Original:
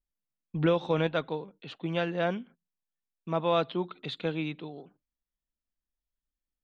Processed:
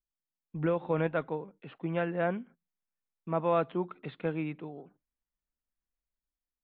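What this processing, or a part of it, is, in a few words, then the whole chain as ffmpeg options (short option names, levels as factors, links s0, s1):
action camera in a waterproof case: -af "lowpass=f=2300:w=0.5412,lowpass=f=2300:w=1.3066,dynaudnorm=f=220:g=7:m=2,volume=0.447" -ar 22050 -c:a aac -b:a 48k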